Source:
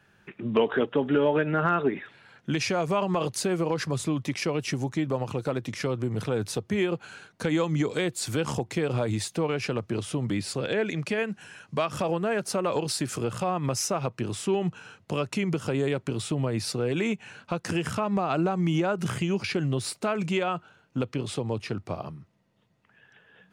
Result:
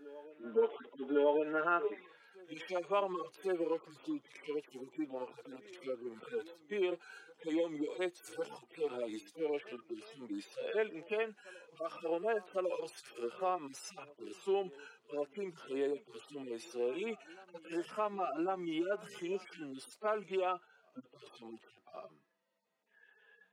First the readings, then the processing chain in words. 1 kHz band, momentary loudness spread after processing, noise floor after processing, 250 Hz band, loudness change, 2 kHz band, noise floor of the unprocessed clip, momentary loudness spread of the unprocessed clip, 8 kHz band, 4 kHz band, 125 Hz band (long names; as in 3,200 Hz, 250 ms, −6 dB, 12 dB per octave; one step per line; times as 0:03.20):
−8.5 dB, 18 LU, −71 dBFS, −13.5 dB, −10.0 dB, −12.5 dB, −63 dBFS, 8 LU, −21.5 dB, −16.0 dB, −30.5 dB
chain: harmonic-percussive split with one part muted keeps harmonic
high-pass filter 320 Hz 24 dB per octave
on a send: backwards echo 1,103 ms −21.5 dB
on the sum: level −5.5 dB